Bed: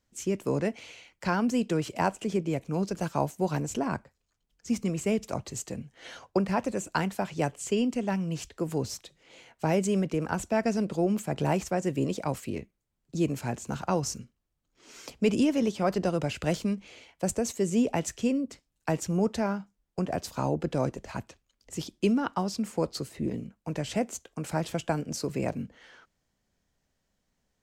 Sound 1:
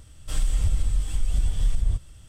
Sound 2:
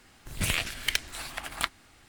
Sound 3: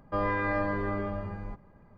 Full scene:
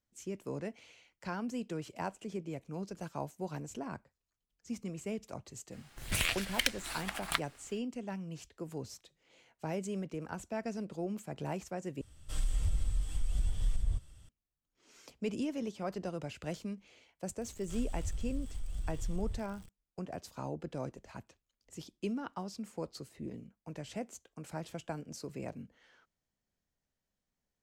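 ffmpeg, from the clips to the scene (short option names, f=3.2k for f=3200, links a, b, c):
-filter_complex "[1:a]asplit=2[a][b];[0:a]volume=-11.5dB[c];[2:a]equalizer=f=170:w=0.43:g=-3.5[d];[b]aeval=exprs='val(0)+0.5*0.0178*sgn(val(0))':c=same[e];[c]asplit=2[f][g];[f]atrim=end=12.014[h];[a]atrim=end=2.28,asetpts=PTS-STARTPTS,volume=-9dB[i];[g]atrim=start=14.286[j];[d]atrim=end=2.08,asetpts=PTS-STARTPTS,volume=-3dB,afade=t=in:d=0.02,afade=t=out:st=2.06:d=0.02,adelay=5710[k];[e]atrim=end=2.28,asetpts=PTS-STARTPTS,volume=-16dB,afade=t=in:d=0.004:c=hsin,afade=t=out:st=2.276:d=0.004:c=hsin,adelay=17410[l];[h][i]acrossfade=d=0.004:c1=hsin:c2=hsin[m];[m][j]acrossfade=d=0.004:c1=hsin:c2=hsin[n];[n][k][l]amix=inputs=3:normalize=0"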